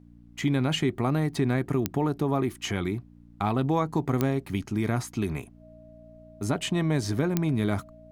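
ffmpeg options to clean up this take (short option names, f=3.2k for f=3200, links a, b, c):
-af "adeclick=t=4,bandreject=f=58.4:t=h:w=4,bandreject=f=116.8:t=h:w=4,bandreject=f=175.2:t=h:w=4,bandreject=f=233.6:t=h:w=4,bandreject=f=292:t=h:w=4,bandreject=f=630:w=30,agate=range=-21dB:threshold=-43dB"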